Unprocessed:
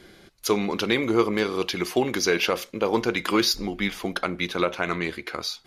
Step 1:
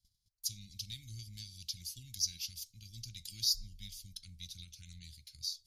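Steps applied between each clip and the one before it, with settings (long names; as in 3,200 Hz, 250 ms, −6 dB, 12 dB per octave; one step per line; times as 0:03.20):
elliptic band-stop filter 100–4,800 Hz, stop band 70 dB
noise gate −56 dBFS, range −18 dB
level −5.5 dB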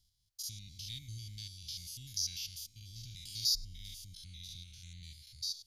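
spectrum averaged block by block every 100 ms
thirty-one-band graphic EQ 200 Hz −7 dB, 500 Hz −6 dB, 1,250 Hz −5 dB, 3,150 Hz +5 dB
level +3 dB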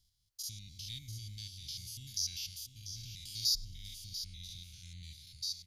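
single-tap delay 691 ms −11 dB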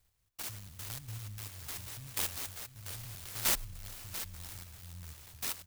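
converter with an unsteady clock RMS 0.13 ms
level +2 dB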